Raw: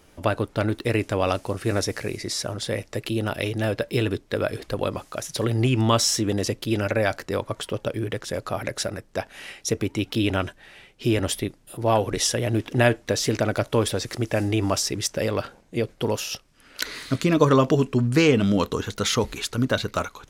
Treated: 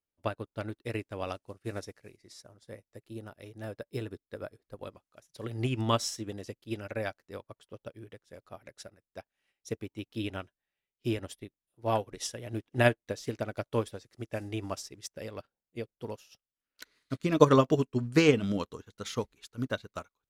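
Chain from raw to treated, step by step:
0:02.40–0:04.85: dynamic equaliser 2,900 Hz, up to −7 dB, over −47 dBFS, Q 1.5
expander for the loud parts 2.5 to 1, over −41 dBFS

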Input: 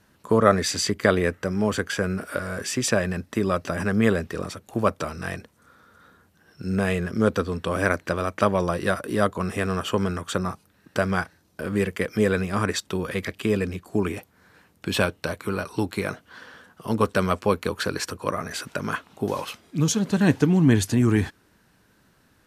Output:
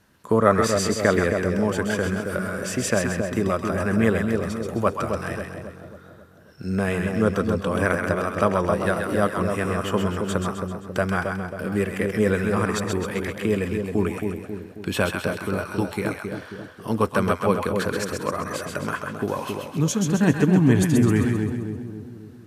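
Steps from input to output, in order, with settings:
dynamic equaliser 4,300 Hz, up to −6 dB, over −45 dBFS, Q 1.2
echo with a time of its own for lows and highs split 760 Hz, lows 270 ms, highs 131 ms, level −4.5 dB

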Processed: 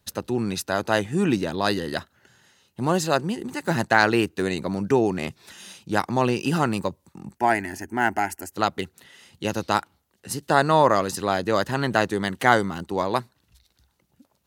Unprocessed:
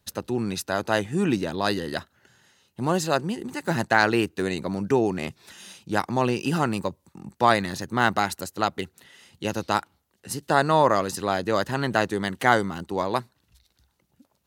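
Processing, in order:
0:07.38–0:08.52: phaser with its sweep stopped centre 780 Hz, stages 8
level +1.5 dB

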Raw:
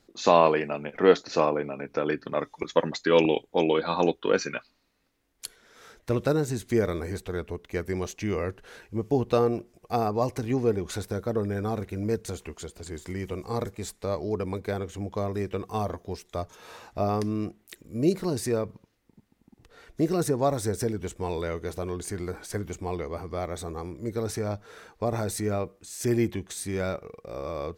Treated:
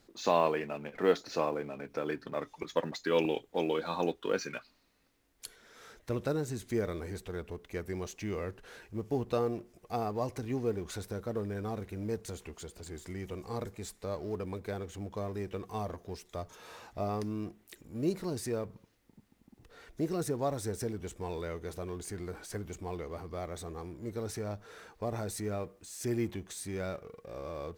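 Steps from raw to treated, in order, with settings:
mu-law and A-law mismatch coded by mu
level −8.5 dB

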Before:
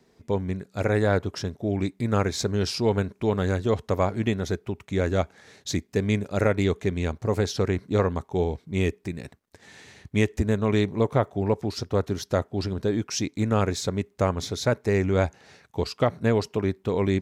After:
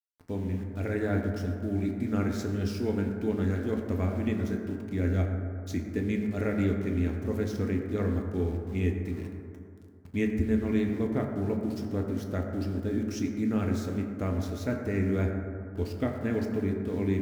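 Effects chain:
octave-band graphic EQ 125/250/500/1,000/4,000/8,000 Hz −9/+5/−7/−12/−10/−10 dB
centre clipping without the shift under −44.5 dBFS
on a send: convolution reverb RT60 2.5 s, pre-delay 5 ms, DRR 1 dB
on the sum: level −3.5 dB

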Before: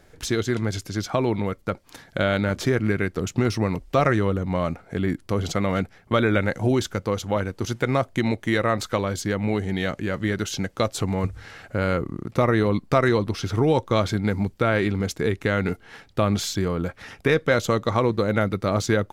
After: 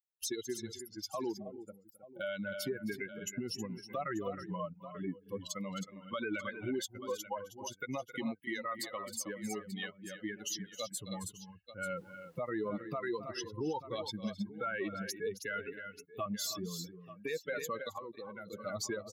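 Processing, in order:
spectral dynamics exaggerated over time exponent 3
0:11.96–0:12.49: background noise brown −59 dBFS
0:15.59–0:16.26: comb filter 2.7 ms, depth 99%
downward compressor 10 to 1, threshold −29 dBFS, peak gain reduction 11 dB
on a send: multi-tap delay 264/316/885 ms −19/−12.5/−19 dB
0:01.37–0:02.21: on the sum: gain on a spectral selection 830–6,800 Hz −19 dB
0:17.93–0:18.50: output level in coarse steps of 15 dB
high-pass filter 260 Hz 12 dB per octave
high-shelf EQ 7,900 Hz +10 dB
brickwall limiter −29.5 dBFS, peak gain reduction 10.5 dB
level +1.5 dB

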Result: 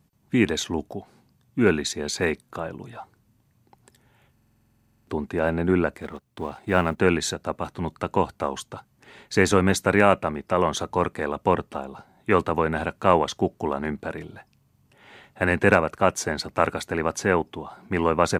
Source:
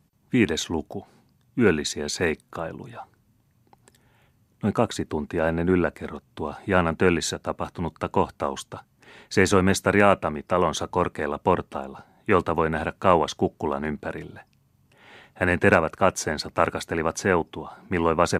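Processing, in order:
0:06.00–0:06.98: mu-law and A-law mismatch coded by A
buffer that repeats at 0:04.33, samples 2,048, times 15

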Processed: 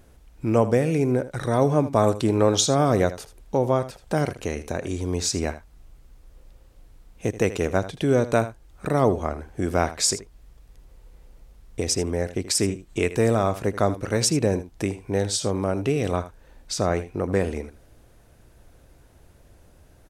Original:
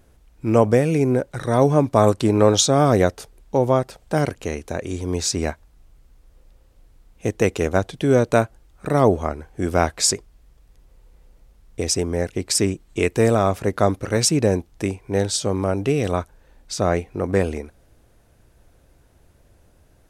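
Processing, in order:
single-tap delay 79 ms −15 dB
in parallel at +3 dB: downward compressor, threshold −30 dBFS, peak gain reduction 19 dB
on the sum: level −5.5 dB

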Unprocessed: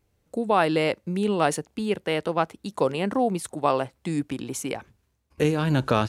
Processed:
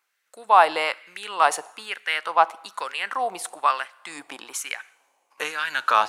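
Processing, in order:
coupled-rooms reverb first 0.85 s, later 3.5 s, from −21 dB, DRR 19 dB
auto-filter high-pass sine 1.1 Hz 820–1,700 Hz
level +2.5 dB

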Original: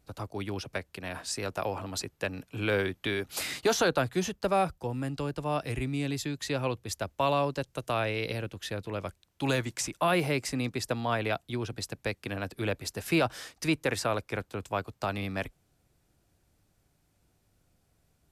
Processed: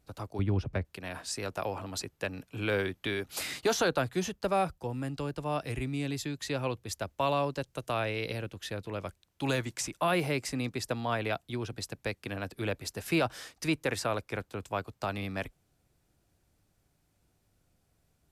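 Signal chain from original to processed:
0:00.39–0:00.85: RIAA equalisation playback
level −2 dB

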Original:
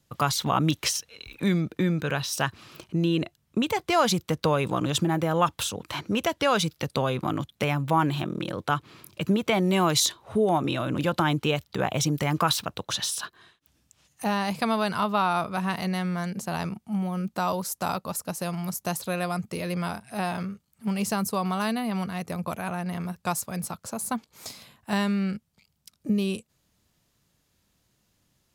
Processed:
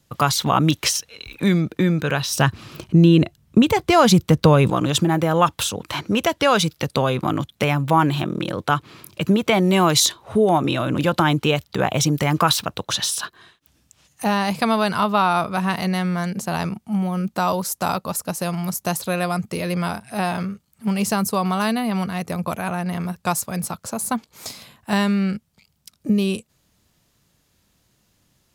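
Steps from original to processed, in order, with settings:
0:02.30–0:04.70: low-shelf EQ 270 Hz +10 dB
level +6 dB

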